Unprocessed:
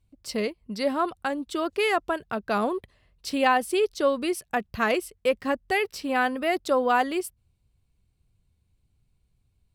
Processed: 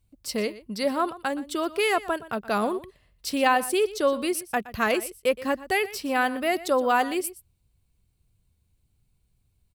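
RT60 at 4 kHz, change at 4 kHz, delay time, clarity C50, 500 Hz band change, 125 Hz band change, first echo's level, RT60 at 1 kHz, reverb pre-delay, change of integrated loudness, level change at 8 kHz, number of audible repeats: no reverb audible, +1.5 dB, 120 ms, no reverb audible, 0.0 dB, 0.0 dB, −17.0 dB, no reverb audible, no reverb audible, +0.5 dB, +5.5 dB, 1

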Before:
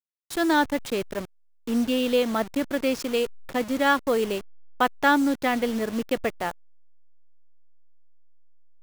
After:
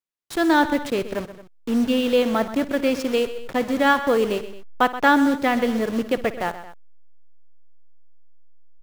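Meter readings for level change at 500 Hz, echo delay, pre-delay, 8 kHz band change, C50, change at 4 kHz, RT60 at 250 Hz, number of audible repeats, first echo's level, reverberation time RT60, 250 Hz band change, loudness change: +3.5 dB, 58 ms, no reverb audible, −0.5 dB, no reverb audible, +2.0 dB, no reverb audible, 3, −17.0 dB, no reverb audible, +4.0 dB, +3.5 dB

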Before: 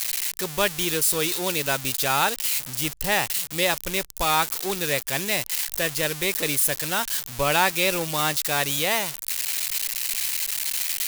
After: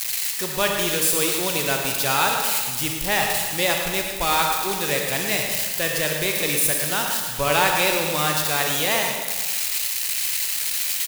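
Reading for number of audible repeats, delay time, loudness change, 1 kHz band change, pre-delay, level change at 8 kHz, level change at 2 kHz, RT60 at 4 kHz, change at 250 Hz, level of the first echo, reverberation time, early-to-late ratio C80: 1, 111 ms, +2.5 dB, +2.5 dB, 31 ms, +2.5 dB, +2.5 dB, 1.4 s, +2.0 dB, −8.0 dB, 1.5 s, 3.0 dB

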